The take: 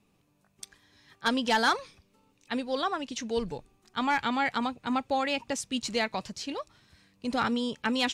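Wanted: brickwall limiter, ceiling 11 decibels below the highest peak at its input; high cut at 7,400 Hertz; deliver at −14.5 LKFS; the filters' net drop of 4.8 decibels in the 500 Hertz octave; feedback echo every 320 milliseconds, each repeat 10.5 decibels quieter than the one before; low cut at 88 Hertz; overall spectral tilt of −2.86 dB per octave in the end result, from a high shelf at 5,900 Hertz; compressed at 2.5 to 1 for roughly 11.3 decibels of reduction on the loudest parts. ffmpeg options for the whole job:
ffmpeg -i in.wav -af "highpass=88,lowpass=7400,equalizer=frequency=500:width_type=o:gain=-5.5,highshelf=frequency=5900:gain=6.5,acompressor=threshold=-39dB:ratio=2.5,alimiter=level_in=7dB:limit=-24dB:level=0:latency=1,volume=-7dB,aecho=1:1:320|640|960:0.299|0.0896|0.0269,volume=27dB" out.wav

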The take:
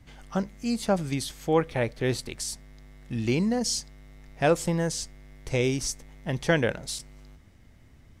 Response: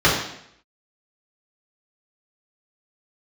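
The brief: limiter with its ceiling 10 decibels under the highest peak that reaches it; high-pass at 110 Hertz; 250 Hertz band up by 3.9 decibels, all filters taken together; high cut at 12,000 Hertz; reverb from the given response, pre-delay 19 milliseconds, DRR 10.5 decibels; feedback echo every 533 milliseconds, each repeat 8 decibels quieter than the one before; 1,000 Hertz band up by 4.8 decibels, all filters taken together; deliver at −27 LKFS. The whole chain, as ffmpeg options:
-filter_complex "[0:a]highpass=110,lowpass=12000,equalizer=frequency=250:width_type=o:gain=5,equalizer=frequency=1000:width_type=o:gain=6.5,alimiter=limit=-15dB:level=0:latency=1,aecho=1:1:533|1066|1599|2132|2665:0.398|0.159|0.0637|0.0255|0.0102,asplit=2[link_01][link_02];[1:a]atrim=start_sample=2205,adelay=19[link_03];[link_02][link_03]afir=irnorm=-1:irlink=0,volume=-33dB[link_04];[link_01][link_04]amix=inputs=2:normalize=0,volume=0.5dB"

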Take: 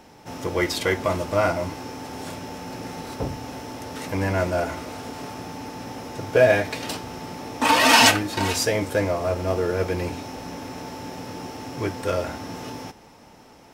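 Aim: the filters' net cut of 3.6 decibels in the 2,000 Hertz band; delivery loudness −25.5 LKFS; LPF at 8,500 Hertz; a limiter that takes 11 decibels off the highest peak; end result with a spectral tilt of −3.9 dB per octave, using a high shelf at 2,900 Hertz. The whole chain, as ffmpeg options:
ffmpeg -i in.wav -af "lowpass=8500,equalizer=frequency=2000:width_type=o:gain=-7.5,highshelf=frequency=2900:gain=6.5,volume=1.5dB,alimiter=limit=-10.5dB:level=0:latency=1" out.wav

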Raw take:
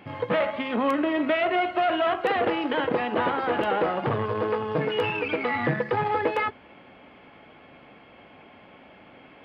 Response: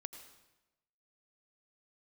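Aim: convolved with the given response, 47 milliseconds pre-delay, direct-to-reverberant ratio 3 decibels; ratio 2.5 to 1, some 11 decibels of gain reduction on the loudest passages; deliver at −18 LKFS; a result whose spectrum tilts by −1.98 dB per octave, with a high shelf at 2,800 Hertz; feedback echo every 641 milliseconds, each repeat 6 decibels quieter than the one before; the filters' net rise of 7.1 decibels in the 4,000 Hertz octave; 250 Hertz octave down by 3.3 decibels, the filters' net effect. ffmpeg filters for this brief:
-filter_complex "[0:a]equalizer=frequency=250:width_type=o:gain=-4.5,highshelf=frequency=2800:gain=4,equalizer=frequency=4000:width_type=o:gain=8,acompressor=threshold=-37dB:ratio=2.5,aecho=1:1:641|1282|1923|2564|3205|3846:0.501|0.251|0.125|0.0626|0.0313|0.0157,asplit=2[link_01][link_02];[1:a]atrim=start_sample=2205,adelay=47[link_03];[link_02][link_03]afir=irnorm=-1:irlink=0,volume=0.5dB[link_04];[link_01][link_04]amix=inputs=2:normalize=0,volume=14.5dB"

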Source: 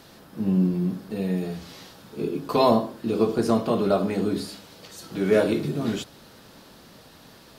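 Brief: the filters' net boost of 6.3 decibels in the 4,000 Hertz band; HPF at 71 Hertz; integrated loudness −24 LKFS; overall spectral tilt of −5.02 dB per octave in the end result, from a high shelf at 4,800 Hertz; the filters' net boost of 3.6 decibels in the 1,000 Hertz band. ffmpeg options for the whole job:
ffmpeg -i in.wav -af "highpass=71,equalizer=frequency=1000:width_type=o:gain=4,equalizer=frequency=4000:width_type=o:gain=4.5,highshelf=frequency=4800:gain=5.5,volume=-0.5dB" out.wav

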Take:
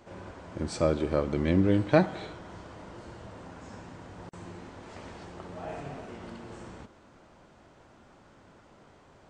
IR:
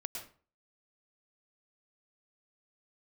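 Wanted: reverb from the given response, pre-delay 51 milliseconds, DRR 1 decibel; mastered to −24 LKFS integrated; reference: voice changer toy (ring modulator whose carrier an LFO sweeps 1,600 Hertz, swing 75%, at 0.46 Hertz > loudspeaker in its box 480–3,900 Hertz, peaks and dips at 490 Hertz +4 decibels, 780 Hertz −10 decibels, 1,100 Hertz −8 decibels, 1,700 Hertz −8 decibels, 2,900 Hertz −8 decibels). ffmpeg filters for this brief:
-filter_complex "[0:a]asplit=2[link_01][link_02];[1:a]atrim=start_sample=2205,adelay=51[link_03];[link_02][link_03]afir=irnorm=-1:irlink=0,volume=-0.5dB[link_04];[link_01][link_04]amix=inputs=2:normalize=0,aeval=exprs='val(0)*sin(2*PI*1600*n/s+1600*0.75/0.46*sin(2*PI*0.46*n/s))':channel_layout=same,highpass=480,equalizer=frequency=490:width_type=q:width=4:gain=4,equalizer=frequency=780:width_type=q:width=4:gain=-10,equalizer=frequency=1100:width_type=q:width=4:gain=-8,equalizer=frequency=1700:width_type=q:width=4:gain=-8,equalizer=frequency=2900:width_type=q:width=4:gain=-8,lowpass=frequency=3900:width=0.5412,lowpass=frequency=3900:width=1.3066,volume=9dB"

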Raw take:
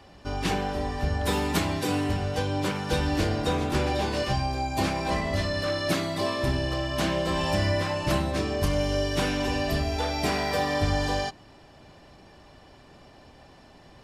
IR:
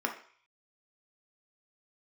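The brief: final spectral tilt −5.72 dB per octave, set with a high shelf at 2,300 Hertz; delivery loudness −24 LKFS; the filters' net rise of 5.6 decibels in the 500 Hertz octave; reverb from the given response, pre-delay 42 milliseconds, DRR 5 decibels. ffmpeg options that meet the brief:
-filter_complex "[0:a]equalizer=frequency=500:width_type=o:gain=7.5,highshelf=frequency=2300:gain=-8,asplit=2[link_01][link_02];[1:a]atrim=start_sample=2205,adelay=42[link_03];[link_02][link_03]afir=irnorm=-1:irlink=0,volume=-12dB[link_04];[link_01][link_04]amix=inputs=2:normalize=0"

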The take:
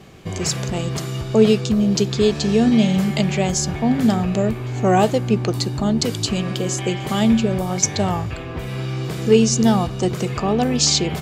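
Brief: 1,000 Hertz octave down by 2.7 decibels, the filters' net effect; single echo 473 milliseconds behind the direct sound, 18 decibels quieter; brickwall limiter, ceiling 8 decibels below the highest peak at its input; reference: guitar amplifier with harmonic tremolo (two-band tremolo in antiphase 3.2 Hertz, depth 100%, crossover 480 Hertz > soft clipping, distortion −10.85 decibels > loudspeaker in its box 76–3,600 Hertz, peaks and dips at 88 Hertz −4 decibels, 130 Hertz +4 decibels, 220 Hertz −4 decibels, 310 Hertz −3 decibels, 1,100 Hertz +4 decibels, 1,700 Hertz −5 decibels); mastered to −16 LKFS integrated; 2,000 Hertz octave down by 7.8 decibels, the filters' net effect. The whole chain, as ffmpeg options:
ffmpeg -i in.wav -filter_complex "[0:a]equalizer=frequency=1000:width_type=o:gain=-3.5,equalizer=frequency=2000:width_type=o:gain=-7.5,alimiter=limit=-11.5dB:level=0:latency=1,aecho=1:1:473:0.126,acrossover=split=480[link_01][link_02];[link_01]aeval=exprs='val(0)*(1-1/2+1/2*cos(2*PI*3.2*n/s))':channel_layout=same[link_03];[link_02]aeval=exprs='val(0)*(1-1/2-1/2*cos(2*PI*3.2*n/s))':channel_layout=same[link_04];[link_03][link_04]amix=inputs=2:normalize=0,asoftclip=threshold=-22.5dB,highpass=76,equalizer=frequency=88:width_type=q:width=4:gain=-4,equalizer=frequency=130:width_type=q:width=4:gain=4,equalizer=frequency=220:width_type=q:width=4:gain=-4,equalizer=frequency=310:width_type=q:width=4:gain=-3,equalizer=frequency=1100:width_type=q:width=4:gain=4,equalizer=frequency=1700:width_type=q:width=4:gain=-5,lowpass=frequency=3600:width=0.5412,lowpass=frequency=3600:width=1.3066,volume=15dB" out.wav

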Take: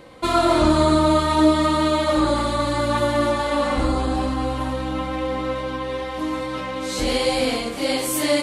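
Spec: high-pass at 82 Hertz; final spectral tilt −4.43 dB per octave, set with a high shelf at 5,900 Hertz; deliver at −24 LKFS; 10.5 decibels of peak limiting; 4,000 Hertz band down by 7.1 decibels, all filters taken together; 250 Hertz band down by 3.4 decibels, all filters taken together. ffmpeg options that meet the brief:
ffmpeg -i in.wav -af "highpass=82,equalizer=frequency=250:width_type=o:gain=-4.5,equalizer=frequency=4000:width_type=o:gain=-6,highshelf=frequency=5900:gain=-8,volume=3dB,alimiter=limit=-15dB:level=0:latency=1" out.wav

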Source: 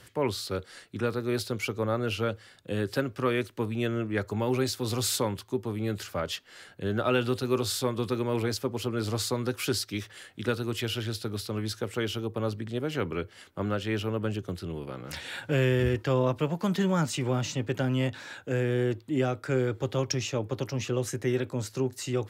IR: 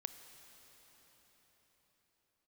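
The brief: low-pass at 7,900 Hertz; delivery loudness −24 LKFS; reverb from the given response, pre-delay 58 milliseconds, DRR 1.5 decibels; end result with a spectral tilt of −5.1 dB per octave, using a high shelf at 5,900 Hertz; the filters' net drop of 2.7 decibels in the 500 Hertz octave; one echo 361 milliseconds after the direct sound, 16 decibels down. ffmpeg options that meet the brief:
-filter_complex "[0:a]lowpass=7900,equalizer=frequency=500:width_type=o:gain=-3.5,highshelf=frequency=5900:gain=3,aecho=1:1:361:0.158,asplit=2[link_01][link_02];[1:a]atrim=start_sample=2205,adelay=58[link_03];[link_02][link_03]afir=irnorm=-1:irlink=0,volume=1.5dB[link_04];[link_01][link_04]amix=inputs=2:normalize=0,volume=4.5dB"

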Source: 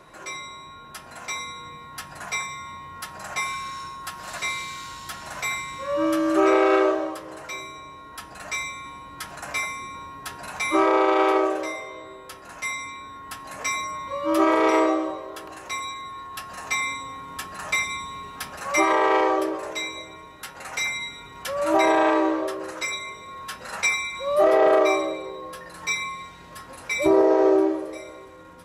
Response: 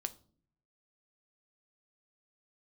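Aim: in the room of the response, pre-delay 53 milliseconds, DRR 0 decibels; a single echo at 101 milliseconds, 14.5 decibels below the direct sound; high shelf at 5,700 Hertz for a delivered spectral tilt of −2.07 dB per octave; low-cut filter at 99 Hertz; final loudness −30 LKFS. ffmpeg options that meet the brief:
-filter_complex "[0:a]highpass=99,highshelf=frequency=5700:gain=7,aecho=1:1:101:0.188,asplit=2[link_01][link_02];[1:a]atrim=start_sample=2205,adelay=53[link_03];[link_02][link_03]afir=irnorm=-1:irlink=0,volume=1dB[link_04];[link_01][link_04]amix=inputs=2:normalize=0,volume=-9dB"

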